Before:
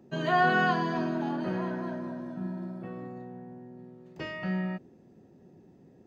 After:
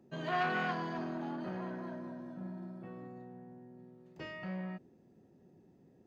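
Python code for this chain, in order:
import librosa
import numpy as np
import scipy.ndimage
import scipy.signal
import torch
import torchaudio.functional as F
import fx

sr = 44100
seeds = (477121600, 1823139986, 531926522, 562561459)

y = fx.transformer_sat(x, sr, knee_hz=1100.0)
y = y * librosa.db_to_amplitude(-7.0)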